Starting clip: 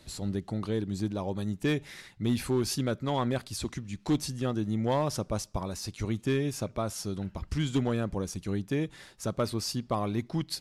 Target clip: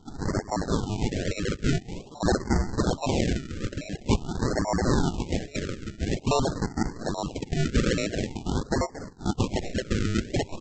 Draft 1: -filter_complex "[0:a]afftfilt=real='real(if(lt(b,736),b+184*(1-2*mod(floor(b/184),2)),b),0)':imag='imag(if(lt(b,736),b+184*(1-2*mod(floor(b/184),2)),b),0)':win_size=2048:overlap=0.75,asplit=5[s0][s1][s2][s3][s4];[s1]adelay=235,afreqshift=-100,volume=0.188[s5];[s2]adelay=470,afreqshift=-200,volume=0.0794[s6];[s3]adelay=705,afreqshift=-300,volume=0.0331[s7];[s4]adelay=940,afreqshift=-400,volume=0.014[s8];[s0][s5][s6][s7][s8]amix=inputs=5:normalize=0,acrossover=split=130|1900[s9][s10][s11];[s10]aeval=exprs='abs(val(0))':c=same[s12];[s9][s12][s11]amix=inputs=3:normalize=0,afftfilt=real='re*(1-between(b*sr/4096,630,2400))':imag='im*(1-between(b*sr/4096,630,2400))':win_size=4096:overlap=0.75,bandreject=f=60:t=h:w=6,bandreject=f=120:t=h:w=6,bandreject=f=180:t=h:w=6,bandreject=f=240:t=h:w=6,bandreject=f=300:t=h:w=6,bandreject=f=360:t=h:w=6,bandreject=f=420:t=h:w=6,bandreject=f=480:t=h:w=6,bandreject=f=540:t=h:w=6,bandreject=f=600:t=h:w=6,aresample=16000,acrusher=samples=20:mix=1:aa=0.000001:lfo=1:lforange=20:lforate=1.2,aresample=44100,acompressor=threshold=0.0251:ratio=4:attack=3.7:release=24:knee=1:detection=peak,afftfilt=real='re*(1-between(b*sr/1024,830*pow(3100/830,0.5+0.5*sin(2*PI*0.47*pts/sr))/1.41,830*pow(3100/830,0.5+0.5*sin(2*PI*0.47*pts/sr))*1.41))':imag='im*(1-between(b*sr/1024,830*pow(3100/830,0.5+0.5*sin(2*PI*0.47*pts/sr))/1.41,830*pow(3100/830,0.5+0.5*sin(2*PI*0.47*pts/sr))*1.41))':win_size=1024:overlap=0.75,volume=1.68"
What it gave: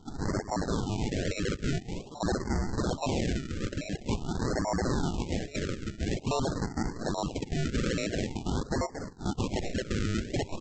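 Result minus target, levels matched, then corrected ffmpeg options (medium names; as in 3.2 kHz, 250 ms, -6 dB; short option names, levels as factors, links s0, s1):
compression: peak gain reduction +8.5 dB
-filter_complex "[0:a]afftfilt=real='real(if(lt(b,736),b+184*(1-2*mod(floor(b/184),2)),b),0)':imag='imag(if(lt(b,736),b+184*(1-2*mod(floor(b/184),2)),b),0)':win_size=2048:overlap=0.75,asplit=5[s0][s1][s2][s3][s4];[s1]adelay=235,afreqshift=-100,volume=0.188[s5];[s2]adelay=470,afreqshift=-200,volume=0.0794[s6];[s3]adelay=705,afreqshift=-300,volume=0.0331[s7];[s4]adelay=940,afreqshift=-400,volume=0.014[s8];[s0][s5][s6][s7][s8]amix=inputs=5:normalize=0,acrossover=split=130|1900[s9][s10][s11];[s10]aeval=exprs='abs(val(0))':c=same[s12];[s9][s12][s11]amix=inputs=3:normalize=0,afftfilt=real='re*(1-between(b*sr/4096,630,2400))':imag='im*(1-between(b*sr/4096,630,2400))':win_size=4096:overlap=0.75,bandreject=f=60:t=h:w=6,bandreject=f=120:t=h:w=6,bandreject=f=180:t=h:w=6,bandreject=f=240:t=h:w=6,bandreject=f=300:t=h:w=6,bandreject=f=360:t=h:w=6,bandreject=f=420:t=h:w=6,bandreject=f=480:t=h:w=6,bandreject=f=540:t=h:w=6,bandreject=f=600:t=h:w=6,aresample=16000,acrusher=samples=20:mix=1:aa=0.000001:lfo=1:lforange=20:lforate=1.2,aresample=44100,afftfilt=real='re*(1-between(b*sr/1024,830*pow(3100/830,0.5+0.5*sin(2*PI*0.47*pts/sr))/1.41,830*pow(3100/830,0.5+0.5*sin(2*PI*0.47*pts/sr))*1.41))':imag='im*(1-between(b*sr/1024,830*pow(3100/830,0.5+0.5*sin(2*PI*0.47*pts/sr))/1.41,830*pow(3100/830,0.5+0.5*sin(2*PI*0.47*pts/sr))*1.41))':win_size=1024:overlap=0.75,volume=1.68"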